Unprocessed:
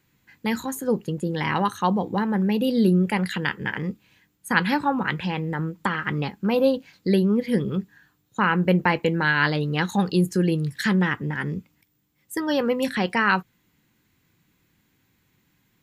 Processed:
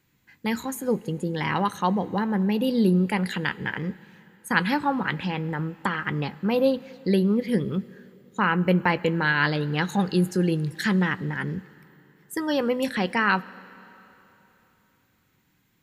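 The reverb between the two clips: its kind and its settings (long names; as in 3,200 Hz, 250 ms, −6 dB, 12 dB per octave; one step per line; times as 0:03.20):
comb and all-pass reverb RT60 3.4 s, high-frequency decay 0.9×, pre-delay 25 ms, DRR 19.5 dB
level −1.5 dB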